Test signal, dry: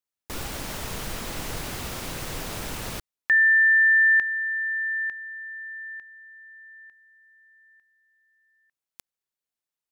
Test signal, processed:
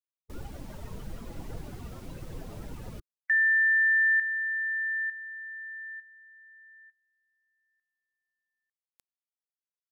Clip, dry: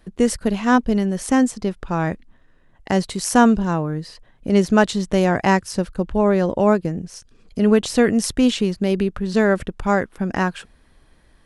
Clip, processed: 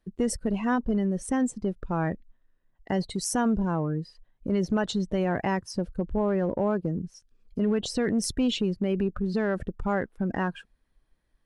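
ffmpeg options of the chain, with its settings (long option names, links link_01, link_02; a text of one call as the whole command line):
ffmpeg -i in.wav -af "afftdn=noise_reduction=17:noise_floor=-30,acompressor=threshold=-16dB:ratio=6:attack=0.33:release=41:knee=6:detection=rms,volume=-3dB" out.wav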